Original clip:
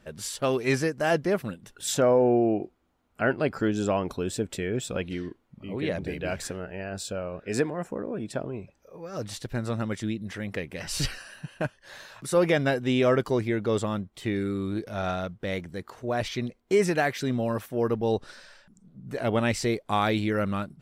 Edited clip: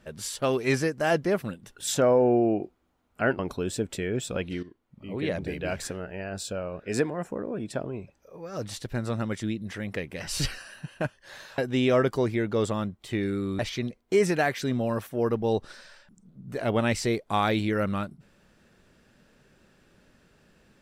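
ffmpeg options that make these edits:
-filter_complex "[0:a]asplit=5[a][b][c][d][e];[a]atrim=end=3.392[f];[b]atrim=start=3.988:end=5.23,asetpts=PTS-STARTPTS,afade=t=out:st=1.238:d=0.004:c=hsin:silence=0.211349[g];[c]atrim=start=5.23:end=12.182,asetpts=PTS-STARTPTS,afade=t=in:d=0.55:silence=0.211349[h];[d]atrim=start=12.708:end=14.722[i];[e]atrim=start=16.178[j];[g][h]concat=n=2:v=0:a=1[k];[f][k]acrossfade=d=0.004:c1=hsin:c2=hsin[l];[l][i]acrossfade=d=0.004:c1=hsin:c2=hsin[m];[m][j]acrossfade=d=0.004:c1=hsin:c2=hsin"

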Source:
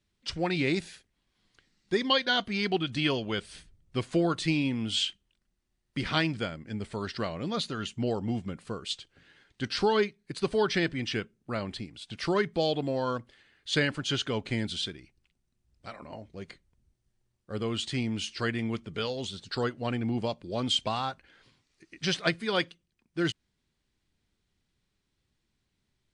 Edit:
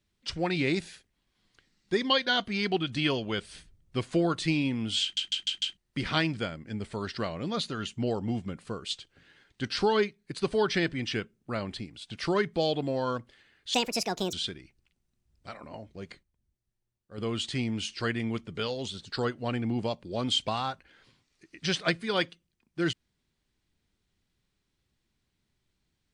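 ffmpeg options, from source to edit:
-filter_complex "[0:a]asplit=10[a][b][c][d][e][f][g][h][i][j];[a]atrim=end=5.172[k];[b]atrim=start=5.018:end=5.172[l];[c]atrim=start=5.018:end=5.172[m];[d]atrim=start=5.018:end=5.172[n];[e]atrim=start=5.018:end=5.172[o];[f]atrim=start=5.768:end=13.744[p];[g]atrim=start=13.74:end=14.72,asetpts=PTS-STARTPTS,asetrate=73206,aresample=44100[q];[h]atrim=start=14.716:end=16.62,asetpts=PTS-STARTPTS,afade=t=out:st=1.774:d=0.13:c=log:silence=0.375837[r];[i]atrim=start=16.62:end=17.57,asetpts=PTS-STARTPTS,volume=-8.5dB[s];[j]atrim=start=17.57,asetpts=PTS-STARTPTS,afade=t=in:d=0.13:c=log:silence=0.375837[t];[k][l]acrossfade=d=0.004:c1=hsin:c2=hsin[u];[u][m]acrossfade=d=0.004:c1=hsin:c2=hsin[v];[v][n]acrossfade=d=0.004:c1=hsin:c2=hsin[w];[w][o]acrossfade=d=0.004:c1=hsin:c2=hsin[x];[x][p]acrossfade=d=0.004:c1=hsin:c2=hsin[y];[y][q]acrossfade=d=0.004:c1=hsin:c2=hsin[z];[r][s][t]concat=n=3:v=0:a=1[aa];[z][aa]acrossfade=d=0.004:c1=hsin:c2=hsin"

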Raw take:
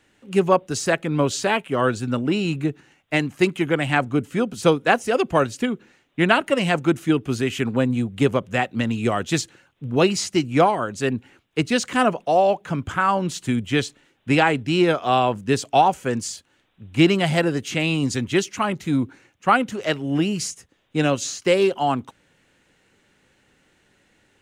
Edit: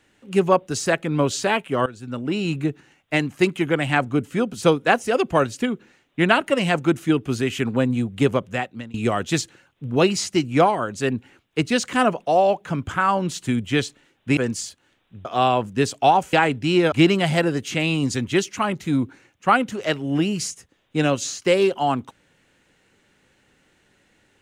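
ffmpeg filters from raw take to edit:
-filter_complex "[0:a]asplit=7[a][b][c][d][e][f][g];[a]atrim=end=1.86,asetpts=PTS-STARTPTS,afade=t=out:st=1.856:d=0.004:c=hsin:silence=0.105925[h];[b]atrim=start=1.86:end=8.94,asetpts=PTS-STARTPTS,afade=t=in:d=0.66:silence=0.105925,afade=t=out:st=6.52:d=0.56:silence=0.0668344[i];[c]atrim=start=8.94:end=14.372,asetpts=PTS-STARTPTS,afade=t=in:d=0.004:c=hsin:silence=0.0668344[j];[d]atrim=start=16.038:end=16.922[k];[e]atrim=start=14.958:end=16.042[l];[f]atrim=start=14.368:end=14.962[m];[g]atrim=start=16.918[n];[h][i][j]concat=n=3:v=0:a=1[o];[o][k]acrossfade=d=0.004:c1=hsin:c2=hsin[p];[p][l]acrossfade=d=0.004:c1=hsin:c2=hsin[q];[q][m]acrossfade=d=0.004:c1=hsin:c2=hsin[r];[r][n]acrossfade=d=0.004:c1=hsin:c2=hsin"

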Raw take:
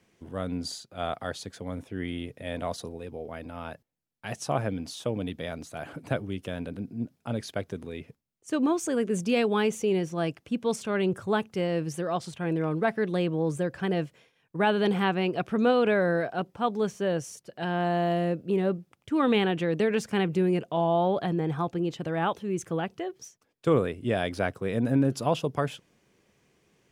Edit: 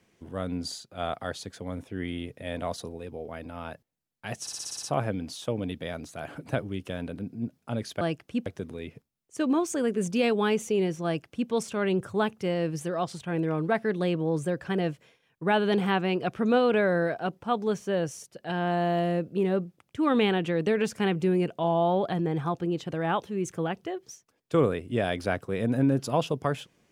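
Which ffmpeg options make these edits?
-filter_complex "[0:a]asplit=10[a][b][c][d][e][f][g][h][i][j];[a]atrim=end=4.472[k];[b]atrim=start=4.408:end=4.472[l];[c]atrim=start=4.408:end=4.472[m];[d]atrim=start=4.408:end=4.472[n];[e]atrim=start=4.408:end=4.472[o];[f]atrim=start=4.408:end=4.472[p];[g]atrim=start=4.408:end=4.472[q];[h]atrim=start=4.408:end=7.592[r];[i]atrim=start=10.178:end=10.632[s];[j]atrim=start=7.588[t];[k][l]acrossfade=d=0.004:c1=hsin:c2=hsin[u];[u][m]acrossfade=d=0.004:c1=hsin:c2=hsin[v];[v][n]acrossfade=d=0.004:c1=hsin:c2=hsin[w];[w][o]acrossfade=d=0.004:c1=hsin:c2=hsin[x];[x][p]acrossfade=d=0.004:c1=hsin:c2=hsin[y];[y][q]acrossfade=d=0.004:c1=hsin:c2=hsin[z];[z][r]acrossfade=d=0.004:c1=hsin:c2=hsin[aa];[aa][s]acrossfade=d=0.004:c1=hsin:c2=hsin[ab];[ab][t]acrossfade=d=0.004:c1=hsin:c2=hsin"

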